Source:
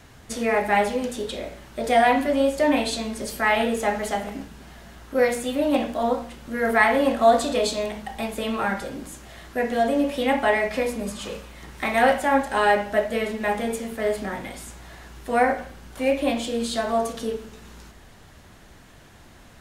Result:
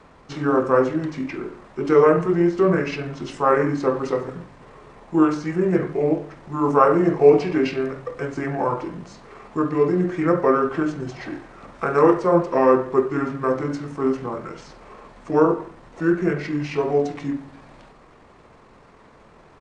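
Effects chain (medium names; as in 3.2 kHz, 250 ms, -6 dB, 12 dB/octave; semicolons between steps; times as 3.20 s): tone controls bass -11 dB, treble -12 dB; pitch shift -8 st; trim +4 dB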